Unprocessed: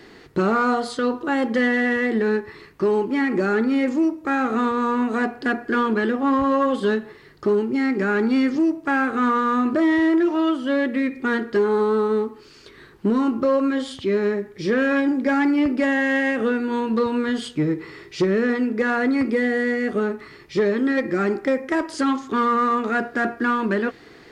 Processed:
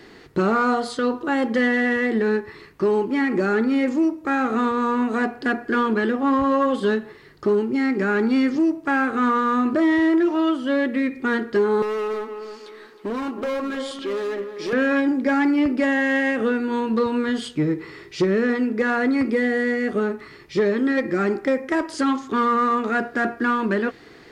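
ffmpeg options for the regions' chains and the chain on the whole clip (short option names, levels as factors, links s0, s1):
-filter_complex "[0:a]asettb=1/sr,asplit=3[s0][s1][s2];[s0]atrim=end=11.824[s3];[s1]atrim=start=11.82:end=14.73,asetpts=PTS-STARTPTS,afade=t=in:d=0.004:c=qsin,afade=t=out:st=2.906:d=0.004:c=qsin,highpass=360,volume=15,asoftclip=hard,volume=0.0668,asplit=2[s4][s5];[s5]adelay=314,lowpass=f=2500:p=1,volume=0.376,asplit=2[s6][s7];[s7]adelay=314,lowpass=f=2500:p=1,volume=0.36,asplit=2[s8][s9];[s9]adelay=314,lowpass=f=2500:p=1,volume=0.36,asplit=2[s10][s11];[s11]adelay=314,lowpass=f=2500:p=1,volume=0.36[s12];[s4][s6][s8][s10][s12]amix=inputs=5:normalize=0,atrim=end_sample=128331[s13];[s2]atrim=start=14.726[s14];[s3][s13]acrossfade=d=0.004:c1=hsin:c2=qsin[s15];[s15][s14]acrossfade=d=0.004:c1=qsin:c2=hsin"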